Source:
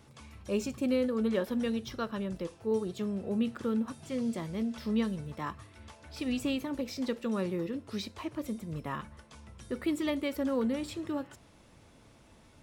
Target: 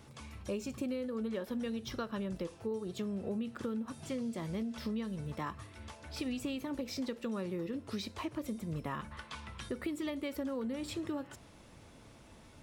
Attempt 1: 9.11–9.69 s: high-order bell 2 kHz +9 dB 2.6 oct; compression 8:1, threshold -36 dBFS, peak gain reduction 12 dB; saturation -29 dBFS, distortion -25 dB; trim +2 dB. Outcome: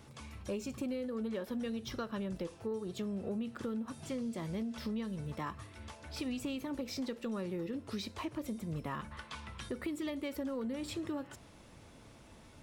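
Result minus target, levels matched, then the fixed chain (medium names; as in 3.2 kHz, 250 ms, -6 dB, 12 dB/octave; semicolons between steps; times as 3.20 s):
saturation: distortion +21 dB
9.11–9.69 s: high-order bell 2 kHz +9 dB 2.6 oct; compression 8:1, threshold -36 dBFS, peak gain reduction 12 dB; saturation -18 dBFS, distortion -46 dB; trim +2 dB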